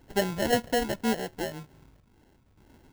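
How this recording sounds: phasing stages 4, 1.9 Hz, lowest notch 370–1900 Hz; aliases and images of a low sample rate 1200 Hz, jitter 0%; random-step tremolo

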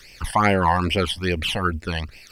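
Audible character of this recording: phasing stages 12, 2.4 Hz, lowest notch 390–1300 Hz; a quantiser's noise floor 12-bit, dither none; Opus

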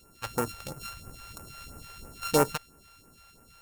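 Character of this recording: a buzz of ramps at a fixed pitch in blocks of 32 samples; phasing stages 2, 3 Hz, lowest notch 220–3700 Hz

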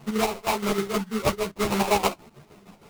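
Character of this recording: aliases and images of a low sample rate 1700 Hz, jitter 20%; chopped level 6.4 Hz, depth 60%, duty 60%; a shimmering, thickened sound

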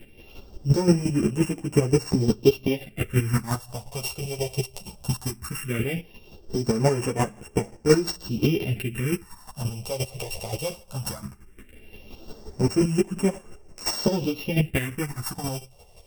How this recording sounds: a buzz of ramps at a fixed pitch in blocks of 16 samples; phasing stages 4, 0.17 Hz, lowest notch 250–3900 Hz; chopped level 5.7 Hz, depth 60%, duty 20%; a shimmering, thickened sound

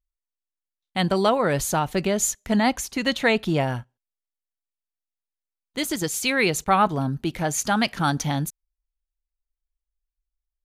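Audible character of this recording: noise floor -89 dBFS; spectral tilt -4.0 dB/oct

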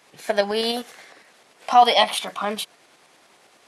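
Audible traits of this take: tremolo saw up 9.8 Hz, depth 40%

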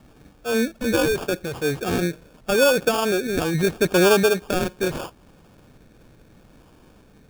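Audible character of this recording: phasing stages 8, 0.78 Hz, lowest notch 750–2100 Hz; aliases and images of a low sample rate 2000 Hz, jitter 0%

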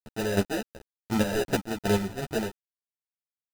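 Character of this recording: aliases and images of a low sample rate 1100 Hz, jitter 0%; chopped level 2.7 Hz, depth 65%, duty 30%; a quantiser's noise floor 8-bit, dither none; a shimmering, thickened sound

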